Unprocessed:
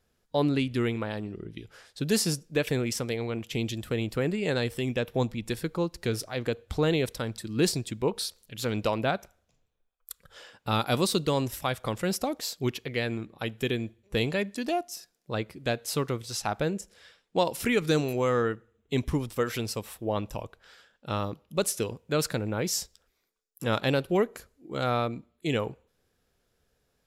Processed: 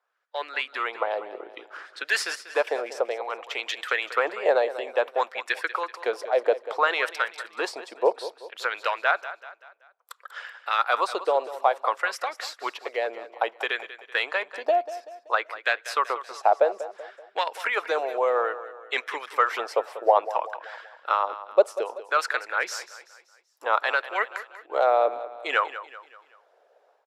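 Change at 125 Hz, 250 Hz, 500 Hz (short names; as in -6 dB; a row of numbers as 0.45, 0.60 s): under -40 dB, -16.0 dB, +3.5 dB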